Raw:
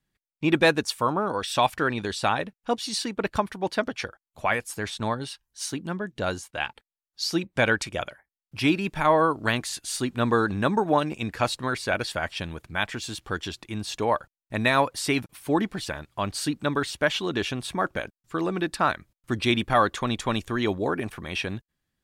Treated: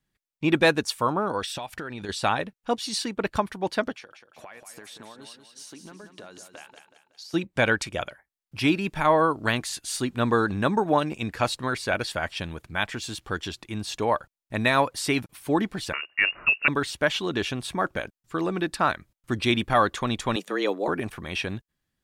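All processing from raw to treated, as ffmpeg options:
ffmpeg -i in.wav -filter_complex "[0:a]asettb=1/sr,asplit=3[link_01][link_02][link_03];[link_01]atrim=end=1.454[link_04];[link_02]atrim=start=1.45:end=2.09,asetpts=PTS-STARTPTS,afade=type=in:duration=0.004:curve=qsin,afade=type=out:start_time=0.636:duration=0.004:curve=qsin,bandreject=frequency=1100:width=11,acompressor=threshold=-30dB:ratio=12:attack=3.2:release=140:knee=1:detection=peak[link_05];[link_03]atrim=start=2.086[link_06];[link_04][link_05]acrossfade=duration=0.004:curve1=hsin:curve2=qsin[link_07];[link_07][link_06]acrossfade=duration=0.004:curve1=qsin:curve2=hsin,asettb=1/sr,asplit=3[link_08][link_09][link_10];[link_08]atrim=end=3.924[link_11];[link_09]atrim=start=3.92:end=7.34,asetpts=PTS-STARTPTS,afade=type=in:duration=0.004:curve=qsin,afade=type=out:start_time=3.416:duration=0.004:curve=qsin,highpass=230,acompressor=threshold=-40dB:ratio=10:attack=3.2:release=140:knee=1:detection=peak,aecho=1:1:186|372|558|744|930:0.376|0.158|0.0663|0.0278|0.0117,atrim=end_sample=150822[link_12];[link_10]atrim=start=7.336[link_13];[link_11][link_12]acrossfade=duration=0.004:curve1=hsin:curve2=qsin[link_14];[link_14][link_13]acrossfade=duration=0.004:curve1=qsin:curve2=hsin,asettb=1/sr,asplit=3[link_15][link_16][link_17];[link_15]atrim=end=15.934[link_18];[link_16]atrim=start=15.93:end=16.68,asetpts=PTS-STARTPTS,afade=type=in:duration=0.004:curve=qsin,afade=type=out:start_time=0.746:duration=0.004:curve=qsin,acontrast=37,lowpass=frequency=2500:width_type=q:width=0.5098,lowpass=frequency=2500:width_type=q:width=0.6013,lowpass=frequency=2500:width_type=q:width=0.9,lowpass=frequency=2500:width_type=q:width=2.563,afreqshift=-2900[link_19];[link_17]atrim=start=16.676[link_20];[link_18][link_19]acrossfade=duration=0.004:curve1=hsin:curve2=qsin[link_21];[link_21][link_20]acrossfade=duration=0.004:curve1=qsin:curve2=hsin,asettb=1/sr,asplit=3[link_22][link_23][link_24];[link_22]atrim=end=20.364[link_25];[link_23]atrim=start=20.36:end=20.88,asetpts=PTS-STARTPTS,afade=type=in:duration=0.004:curve=qsin,afade=type=out:start_time=0.516:duration=0.004:curve=qsin,highpass=140,afreqshift=97[link_26];[link_24]atrim=start=20.876[link_27];[link_25][link_26]acrossfade=duration=0.004:curve1=hsin:curve2=qsin[link_28];[link_28][link_27]acrossfade=duration=0.004:curve1=qsin:curve2=hsin" out.wav

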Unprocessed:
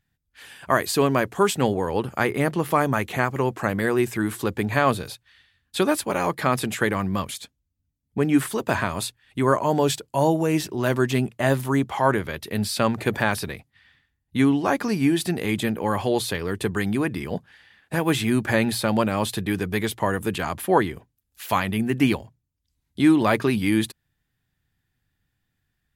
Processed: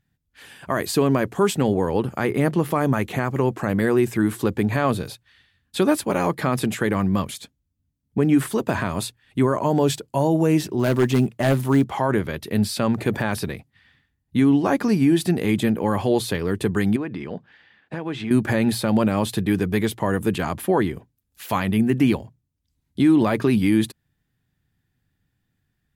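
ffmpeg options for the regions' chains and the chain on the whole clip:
ffmpeg -i in.wav -filter_complex "[0:a]asettb=1/sr,asplit=3[link_01][link_02][link_03];[link_01]atrim=end=10.794[link_04];[link_02]atrim=start=10.79:end=11.84,asetpts=PTS-STARTPTS,afade=type=in:duration=0.004:curve=qsin,afade=type=out:start_time=1.046:duration=0.004:curve=qsin,acrusher=bits=8:mode=log:mix=0:aa=0.000001,aeval=exprs='0.224*(abs(mod(val(0)/0.224+3,4)-2)-1)':channel_layout=same[link_05];[link_03]atrim=start=11.836[link_06];[link_04][link_05]acrossfade=duration=0.004:curve1=hsin:curve2=qsin[link_07];[link_07][link_06]acrossfade=duration=0.004:curve1=qsin:curve2=hsin,asettb=1/sr,asplit=3[link_08][link_09][link_10];[link_08]atrim=end=16.964[link_11];[link_09]atrim=start=16.96:end=18.31,asetpts=PTS-STARTPTS,afade=type=in:duration=0.004:curve=qsin,afade=type=out:start_time=1.346:duration=0.004:curve=qsin,lowpass=3900,lowshelf=frequency=140:gain=-10,acompressor=threshold=-31dB:ratio=2.5:attack=3.2:release=140:knee=1:detection=peak[link_12];[link_10]atrim=start=18.306[link_13];[link_11][link_12]acrossfade=duration=0.004:curve1=hsin:curve2=qsin[link_14];[link_14][link_13]acrossfade=duration=0.004:curve1=qsin:curve2=hsin,equalizer=frequency=200:width=0.41:gain=6.5,alimiter=level_in=7dB:limit=-1dB:release=50:level=0:latency=1,volume=-8dB" out.wav

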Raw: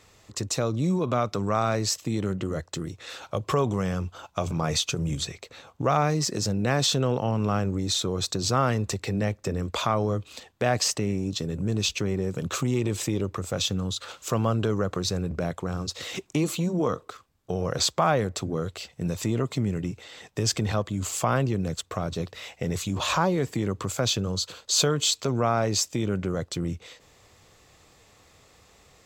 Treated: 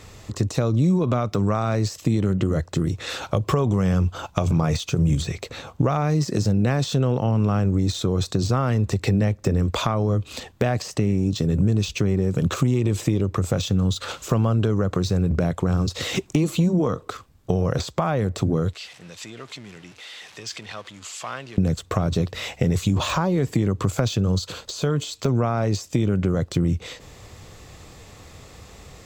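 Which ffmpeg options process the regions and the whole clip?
ffmpeg -i in.wav -filter_complex "[0:a]asettb=1/sr,asplit=3[link_01][link_02][link_03];[link_01]atrim=end=18.734[link_04];[link_02]atrim=start=18.73:end=21.58,asetpts=PTS-STARTPTS,afade=type=in:duration=0.004:curve=qsin,afade=type=out:start_time=2.846:duration=0.004:curve=qsin,aeval=exprs='val(0)+0.5*0.0188*sgn(val(0))':channel_layout=same,lowpass=3100,aderivative[link_05];[link_03]atrim=start=21.576[link_06];[link_04][link_05]acrossfade=duration=0.004:curve1=hsin:curve2=qsin[link_07];[link_07][link_06]acrossfade=duration=0.004:curve1=qsin:curve2=hsin,acompressor=threshold=-32dB:ratio=4,lowshelf=frequency=280:gain=8.5,deesser=0.9,volume=9dB" out.wav

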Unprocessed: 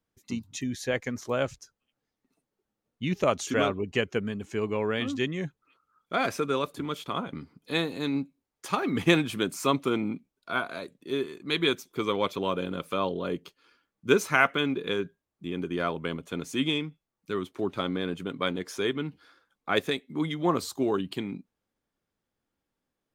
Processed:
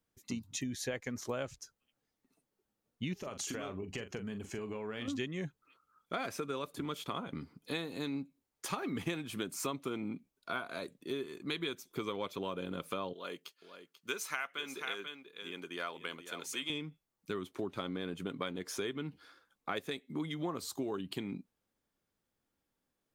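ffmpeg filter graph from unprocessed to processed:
ffmpeg -i in.wav -filter_complex "[0:a]asettb=1/sr,asplit=3[link_01][link_02][link_03];[link_01]atrim=end=3.184[link_04];[link_02]atrim=start=3.18:end=5.08,asetpts=PTS-STARTPTS,afade=type=in:duration=0.004:curve=qsin,afade=type=out:start_time=1.896:duration=0.004:curve=qsin,bandreject=frequency=3700:width=18,acompressor=threshold=-34dB:ratio=12:attack=3.2:release=140:knee=1:detection=peak,asplit=2[link_05][link_06];[link_06]adelay=42,volume=-10.5dB[link_07];[link_05][link_07]amix=inputs=2:normalize=0,atrim=end_sample=83790[link_08];[link_03]atrim=start=5.076[link_09];[link_04][link_08]acrossfade=duration=0.004:curve1=hsin:curve2=qsin[link_10];[link_10][link_09]acrossfade=duration=0.004:curve1=qsin:curve2=hsin,asettb=1/sr,asplit=3[link_11][link_12][link_13];[link_11]atrim=end=13.134[link_14];[link_12]atrim=start=13.13:end=16.7,asetpts=PTS-STARTPTS,afade=type=in:duration=0.004:curve=qsin,afade=type=out:start_time=3.566:duration=0.004:curve=qsin,highpass=frequency=1400:poles=1,aecho=1:1:489:0.251,atrim=end_sample=157437[link_15];[link_13]atrim=start=16.696[link_16];[link_14][link_15]acrossfade=duration=0.004:curve1=hsin:curve2=qsin[link_17];[link_17][link_16]acrossfade=duration=0.004:curve1=qsin:curve2=hsin,highshelf=frequency=6500:gain=4.5,acompressor=threshold=-33dB:ratio=6,volume=-1.5dB" out.wav

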